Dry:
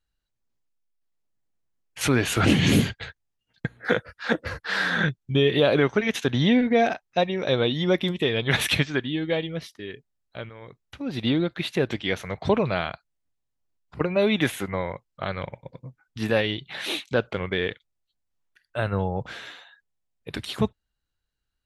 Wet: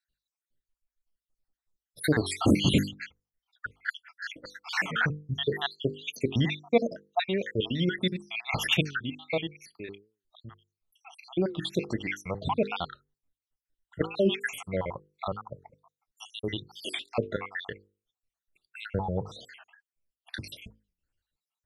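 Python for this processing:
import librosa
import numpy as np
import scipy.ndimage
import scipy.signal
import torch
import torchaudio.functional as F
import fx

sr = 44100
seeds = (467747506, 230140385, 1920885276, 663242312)

y = fx.spec_dropout(x, sr, seeds[0], share_pct=72)
y = fx.hum_notches(y, sr, base_hz=50, count=10)
y = fx.record_warp(y, sr, rpm=45.0, depth_cents=160.0)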